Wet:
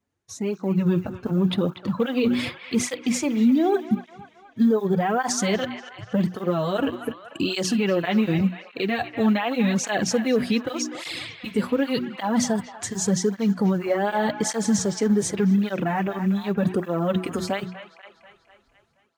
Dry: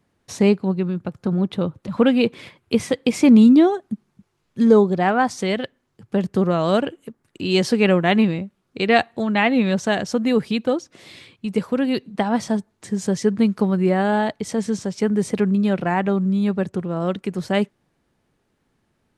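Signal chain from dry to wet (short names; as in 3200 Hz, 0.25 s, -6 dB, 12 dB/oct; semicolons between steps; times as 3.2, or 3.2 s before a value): de-hum 61.04 Hz, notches 6; in parallel at -8.5 dB: short-mantissa float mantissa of 2-bit; on the sum: bell 6600 Hz +6.5 dB 0.39 oct; reverse; compressor 10:1, threshold -22 dBFS, peak gain reduction 17.5 dB; reverse; limiter -22 dBFS, peak gain reduction 11.5 dB; AGC gain up to 10.5 dB; spectral noise reduction 12 dB; band-limited delay 0.242 s, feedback 56%, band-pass 1600 Hz, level -9 dB; tape flanging out of phase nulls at 0.86 Hz, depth 6.7 ms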